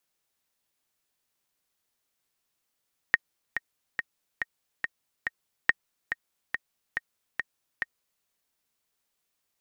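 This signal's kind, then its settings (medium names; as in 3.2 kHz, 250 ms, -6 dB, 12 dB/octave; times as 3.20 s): metronome 141 bpm, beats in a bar 6, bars 2, 1.86 kHz, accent 9.5 dB -5.5 dBFS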